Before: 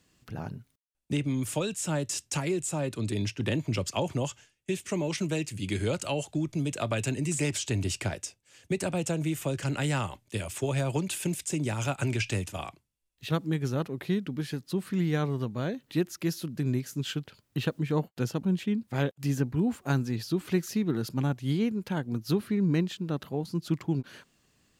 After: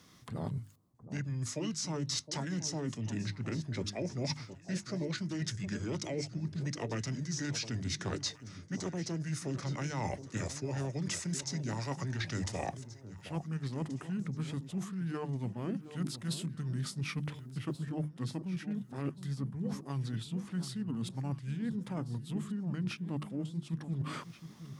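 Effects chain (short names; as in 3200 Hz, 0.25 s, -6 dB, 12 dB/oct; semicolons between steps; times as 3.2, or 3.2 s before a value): HPF 92 Hz 12 dB/oct; bell 3300 Hz -4.5 dB 0.78 oct; notches 50/100/150/200/250/300/350 Hz; reverse; compressor 16:1, threshold -41 dBFS, peak gain reduction 20.5 dB; reverse; formant shift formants -5 st; on a send: echo with dull and thin repeats by turns 0.715 s, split 980 Hz, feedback 56%, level -12 dB; on the sum: gain +8.5 dB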